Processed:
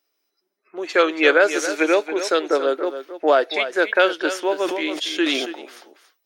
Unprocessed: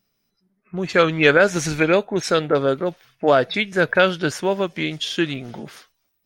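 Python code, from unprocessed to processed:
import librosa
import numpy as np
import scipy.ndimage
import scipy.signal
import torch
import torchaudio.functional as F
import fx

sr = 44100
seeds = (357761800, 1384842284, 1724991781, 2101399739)

y = scipy.signal.sosfilt(scipy.signal.ellip(4, 1.0, 60, 310.0, 'highpass', fs=sr, output='sos'), x)
y = y + 10.0 ** (-11.0 / 20.0) * np.pad(y, (int(279 * sr / 1000.0), 0))[:len(y)]
y = fx.sustainer(y, sr, db_per_s=39.0, at=(4.6, 5.45), fade=0.02)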